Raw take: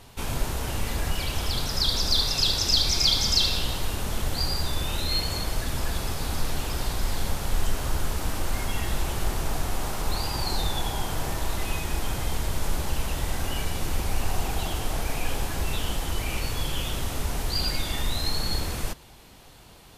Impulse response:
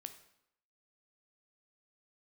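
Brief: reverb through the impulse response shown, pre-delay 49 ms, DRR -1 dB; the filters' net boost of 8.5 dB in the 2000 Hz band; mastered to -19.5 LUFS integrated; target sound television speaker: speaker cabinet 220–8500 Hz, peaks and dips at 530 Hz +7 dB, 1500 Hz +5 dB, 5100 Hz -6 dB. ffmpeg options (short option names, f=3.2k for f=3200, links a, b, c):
-filter_complex "[0:a]equalizer=f=2k:t=o:g=8.5,asplit=2[a][b];[1:a]atrim=start_sample=2205,adelay=49[c];[b][c]afir=irnorm=-1:irlink=0,volume=5.5dB[d];[a][d]amix=inputs=2:normalize=0,highpass=f=220:w=0.5412,highpass=f=220:w=1.3066,equalizer=f=530:t=q:w=4:g=7,equalizer=f=1.5k:t=q:w=4:g=5,equalizer=f=5.1k:t=q:w=4:g=-6,lowpass=f=8.5k:w=0.5412,lowpass=f=8.5k:w=1.3066,volume=4.5dB"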